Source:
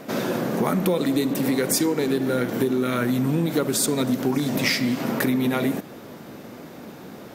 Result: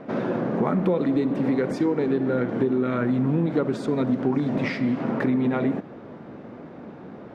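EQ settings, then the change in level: Bessel low-pass 1400 Hz, order 2; 0.0 dB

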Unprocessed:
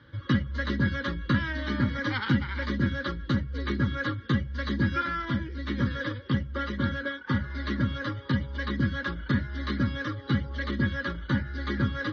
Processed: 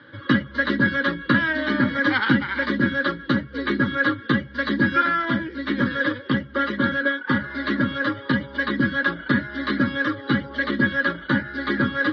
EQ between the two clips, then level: speaker cabinet 200–4700 Hz, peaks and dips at 290 Hz +4 dB, 670 Hz +7 dB, 1600 Hz +5 dB; +7.0 dB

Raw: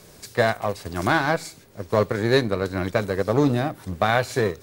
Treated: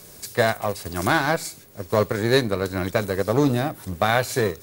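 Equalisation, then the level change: high shelf 7800 Hz +12 dB; 0.0 dB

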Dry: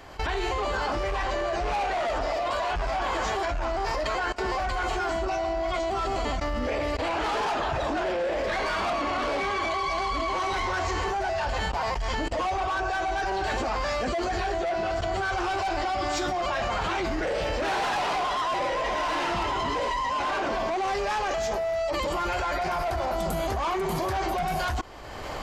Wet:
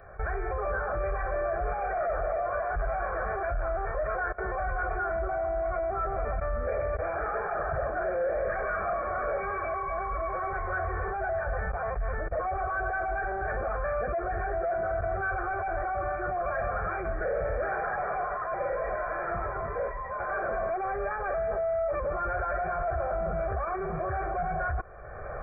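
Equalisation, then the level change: brick-wall FIR low-pass 2400 Hz; fixed phaser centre 1400 Hz, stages 8; 0.0 dB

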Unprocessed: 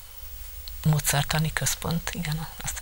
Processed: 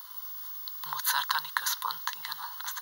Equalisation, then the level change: resonant high-pass 1000 Hz, resonance Q 6; high shelf 4300 Hz +10 dB; fixed phaser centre 2400 Hz, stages 6; -5.5 dB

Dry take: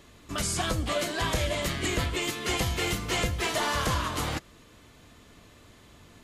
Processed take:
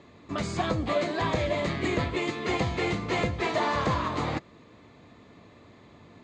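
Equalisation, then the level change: air absorption 100 m; speaker cabinet 110–7200 Hz, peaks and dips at 1500 Hz -7 dB, 3000 Hz -9 dB, 5500 Hz -9 dB; high shelf 5500 Hz -4.5 dB; +4.0 dB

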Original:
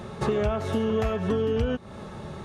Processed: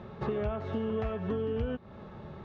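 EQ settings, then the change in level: air absorption 250 m; -6.5 dB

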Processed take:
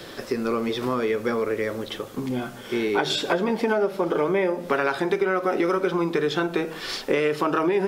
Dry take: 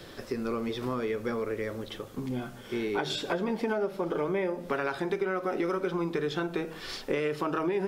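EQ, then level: low shelf 120 Hz -10.5 dB; +8.0 dB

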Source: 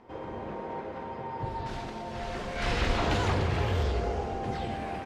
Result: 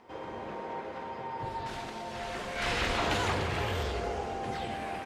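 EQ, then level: dynamic EQ 5200 Hz, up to -4 dB, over -52 dBFS, Q 1.1; tilt +2 dB/oct; 0.0 dB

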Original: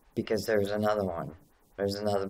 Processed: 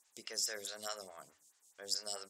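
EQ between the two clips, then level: band-pass 7300 Hz, Q 2.9; +12.0 dB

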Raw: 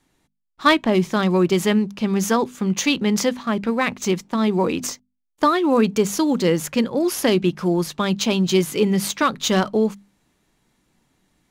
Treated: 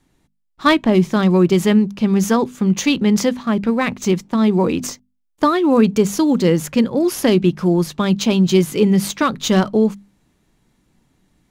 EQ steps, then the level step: low shelf 330 Hz +7.5 dB; 0.0 dB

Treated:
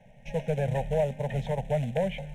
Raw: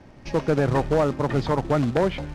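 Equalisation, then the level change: fixed phaser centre 300 Hz, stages 6; fixed phaser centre 1300 Hz, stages 6; -1.0 dB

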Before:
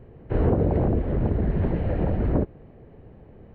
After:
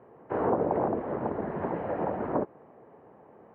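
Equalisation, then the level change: BPF 230–2200 Hz; bell 1000 Hz +13 dB 1.4 oct; -5.5 dB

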